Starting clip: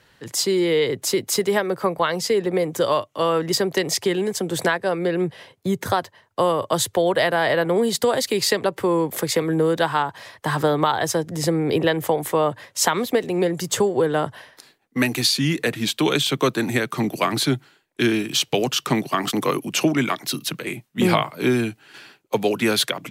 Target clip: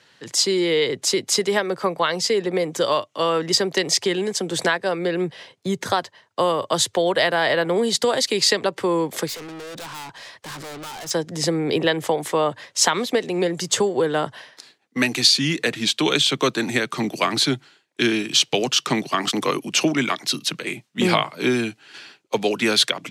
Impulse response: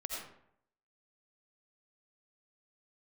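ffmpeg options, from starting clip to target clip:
-filter_complex "[0:a]highpass=140,lowpass=5.9k,asettb=1/sr,asplit=3[a][b][c];[a]atrim=end=9.284[d];[b]atrim=start=9.28:end=11.11,asetpts=PTS-STARTPTS,afade=t=in:d=0.004:c=qsin,afade=t=out:st=1.826:d=0.004:c=qsin,aeval=exprs='(tanh(50.1*val(0)+0.1)-tanh(0.1))/50.1':c=same[e];[c]atrim=start=11.106[f];[d][e]acrossfade=d=0.004:c1=hsin:c2=qsin[g];[g][f]acrossfade=d=0.004:c1=qsin:c2=hsin,highshelf=f=3.5k:g=11,volume=-1dB"

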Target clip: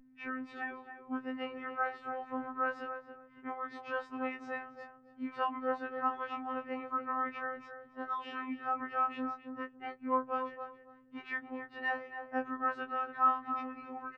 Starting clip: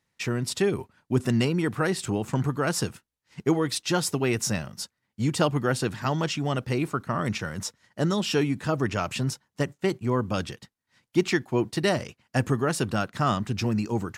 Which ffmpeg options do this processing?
-filter_complex "[0:a]lowpass=f=1.6k:w=0.5412,lowpass=f=1.6k:w=1.3066,aemphasis=mode=production:type=riaa,acrossover=split=720|980[a][b][c];[a]acompressor=threshold=-36dB:ratio=6[d];[d][b][c]amix=inputs=3:normalize=0,aeval=exprs='val(0)+0.00282*(sin(2*PI*50*n/s)+sin(2*PI*2*50*n/s)/2+sin(2*PI*3*50*n/s)/3+sin(2*PI*4*50*n/s)/4+sin(2*PI*5*50*n/s)/5)':c=same,afftfilt=real='hypot(re,im)*cos(PI*b)':imag='0':win_size=2048:overlap=0.75,asplit=2[e][f];[f]adelay=277,lowpass=f=1.1k:p=1,volume=-6dB,asplit=2[g][h];[h]adelay=277,lowpass=f=1.1k:p=1,volume=0.22,asplit=2[i][j];[j]adelay=277,lowpass=f=1.1k:p=1,volume=0.22[k];[e][g][i][k]amix=inputs=4:normalize=0,afftfilt=real='re*2.45*eq(mod(b,6),0)':imag='im*2.45*eq(mod(b,6),0)':win_size=2048:overlap=0.75,volume=1dB"

